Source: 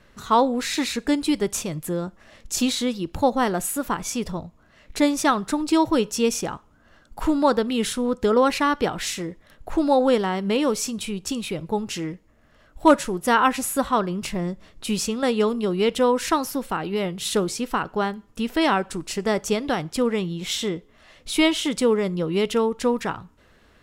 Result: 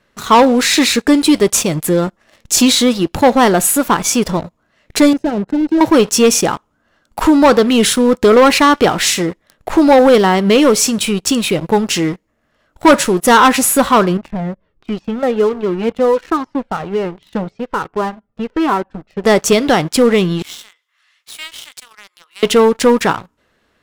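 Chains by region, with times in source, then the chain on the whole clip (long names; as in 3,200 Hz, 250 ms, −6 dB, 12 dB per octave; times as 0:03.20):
0:05.13–0:05.81: hard clipping −22 dBFS + moving average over 38 samples + multiband upward and downward expander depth 70%
0:14.17–0:19.24: head-to-tape spacing loss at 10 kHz 44 dB + flanger whose copies keep moving one way falling 1.3 Hz
0:20.42–0:22.43: high-pass filter 1,200 Hz 24 dB per octave + downward compressor 2 to 1, threshold −52 dBFS
whole clip: low-shelf EQ 93 Hz −11 dB; leveller curve on the samples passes 3; level +3 dB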